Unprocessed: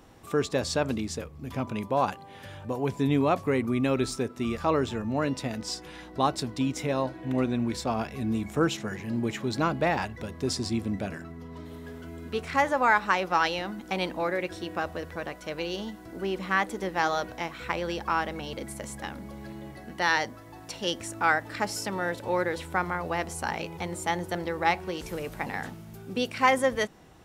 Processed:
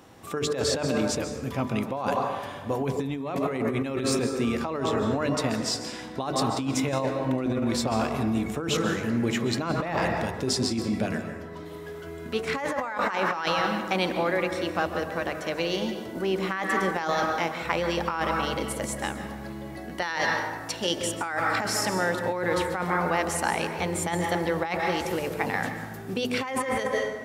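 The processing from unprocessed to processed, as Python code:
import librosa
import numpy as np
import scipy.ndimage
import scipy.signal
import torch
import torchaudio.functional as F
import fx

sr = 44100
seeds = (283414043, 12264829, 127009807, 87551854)

p1 = fx.level_steps(x, sr, step_db=13)
p2 = x + (p1 * 10.0 ** (1.0 / 20.0))
p3 = scipy.signal.sosfilt(scipy.signal.butter(2, 82.0, 'highpass', fs=sr, output='sos'), p2)
p4 = fx.hum_notches(p3, sr, base_hz=50, count=9)
p5 = fx.rev_plate(p4, sr, seeds[0], rt60_s=1.3, hf_ratio=0.5, predelay_ms=120, drr_db=7.0)
p6 = fx.over_compress(p5, sr, threshold_db=-25.0, ratio=-1.0)
y = p6 * 10.0 ** (-1.0 / 20.0)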